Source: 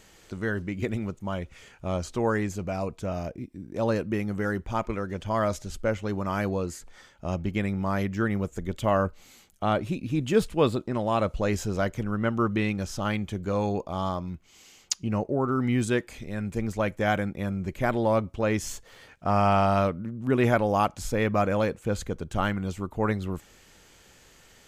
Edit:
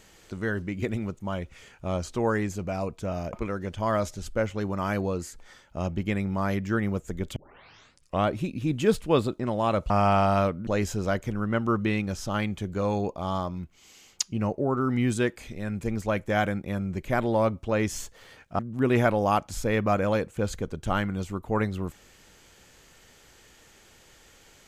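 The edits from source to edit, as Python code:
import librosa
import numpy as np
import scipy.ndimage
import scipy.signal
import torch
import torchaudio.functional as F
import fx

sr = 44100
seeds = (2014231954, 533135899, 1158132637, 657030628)

y = fx.edit(x, sr, fx.cut(start_s=3.33, length_s=1.48),
    fx.tape_start(start_s=8.84, length_s=0.9),
    fx.move(start_s=19.3, length_s=0.77, to_s=11.38), tone=tone)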